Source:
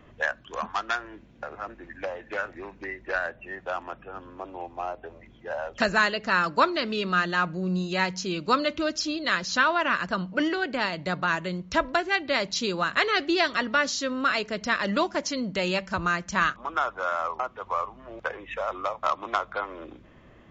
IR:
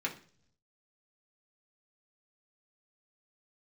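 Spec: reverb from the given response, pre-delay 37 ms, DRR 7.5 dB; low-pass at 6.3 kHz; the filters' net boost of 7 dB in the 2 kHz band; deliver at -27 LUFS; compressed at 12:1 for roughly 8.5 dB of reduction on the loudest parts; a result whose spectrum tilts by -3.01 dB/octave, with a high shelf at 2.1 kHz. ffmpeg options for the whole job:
-filter_complex "[0:a]lowpass=6300,equalizer=f=2000:t=o:g=5.5,highshelf=f=2100:g=7,acompressor=threshold=0.1:ratio=12,asplit=2[s0][s1];[1:a]atrim=start_sample=2205,adelay=37[s2];[s1][s2]afir=irnorm=-1:irlink=0,volume=0.251[s3];[s0][s3]amix=inputs=2:normalize=0,volume=0.891"

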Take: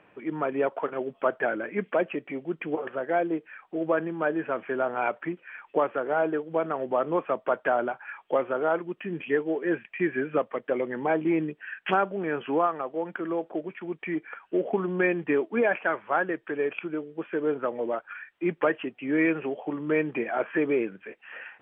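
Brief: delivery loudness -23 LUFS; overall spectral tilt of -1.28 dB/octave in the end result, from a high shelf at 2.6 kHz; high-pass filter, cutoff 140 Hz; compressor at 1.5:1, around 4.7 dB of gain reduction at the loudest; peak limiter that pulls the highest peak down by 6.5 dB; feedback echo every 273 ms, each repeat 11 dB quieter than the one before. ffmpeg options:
-af "highpass=140,highshelf=f=2600:g=3.5,acompressor=threshold=0.0251:ratio=1.5,alimiter=limit=0.0841:level=0:latency=1,aecho=1:1:273|546|819:0.282|0.0789|0.0221,volume=3.16"

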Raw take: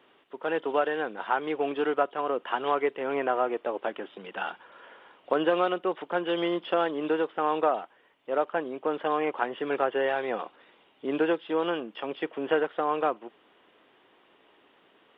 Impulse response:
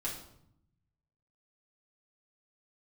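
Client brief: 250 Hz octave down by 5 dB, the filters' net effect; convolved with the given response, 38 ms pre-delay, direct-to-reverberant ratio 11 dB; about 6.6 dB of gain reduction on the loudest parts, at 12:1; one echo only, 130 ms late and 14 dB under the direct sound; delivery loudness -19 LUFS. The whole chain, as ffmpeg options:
-filter_complex "[0:a]equalizer=f=250:t=o:g=-7.5,acompressor=threshold=0.0447:ratio=12,aecho=1:1:130:0.2,asplit=2[s0][s1];[1:a]atrim=start_sample=2205,adelay=38[s2];[s1][s2]afir=irnorm=-1:irlink=0,volume=0.224[s3];[s0][s3]amix=inputs=2:normalize=0,volume=5.31"

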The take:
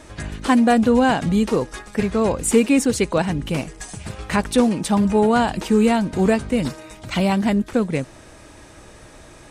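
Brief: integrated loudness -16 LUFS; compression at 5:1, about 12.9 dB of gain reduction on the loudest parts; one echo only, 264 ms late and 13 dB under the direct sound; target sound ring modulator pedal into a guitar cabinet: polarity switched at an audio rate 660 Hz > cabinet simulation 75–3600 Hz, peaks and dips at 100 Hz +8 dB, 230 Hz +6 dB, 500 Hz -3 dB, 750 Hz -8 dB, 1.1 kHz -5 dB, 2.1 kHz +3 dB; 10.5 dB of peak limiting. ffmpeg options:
-af "acompressor=threshold=0.0501:ratio=5,alimiter=level_in=1.06:limit=0.0631:level=0:latency=1,volume=0.944,aecho=1:1:264:0.224,aeval=exprs='val(0)*sgn(sin(2*PI*660*n/s))':c=same,highpass=75,equalizer=f=100:t=q:w=4:g=8,equalizer=f=230:t=q:w=4:g=6,equalizer=f=500:t=q:w=4:g=-3,equalizer=f=750:t=q:w=4:g=-8,equalizer=f=1100:t=q:w=4:g=-5,equalizer=f=2100:t=q:w=4:g=3,lowpass=f=3600:w=0.5412,lowpass=f=3600:w=1.3066,volume=7.94"

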